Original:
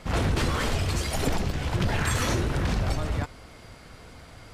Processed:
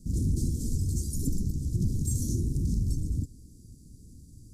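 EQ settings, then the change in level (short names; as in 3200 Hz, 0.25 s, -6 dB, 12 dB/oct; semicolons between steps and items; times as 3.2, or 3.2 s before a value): inverse Chebyshev band-stop 760–2600 Hz, stop band 60 dB; -1.0 dB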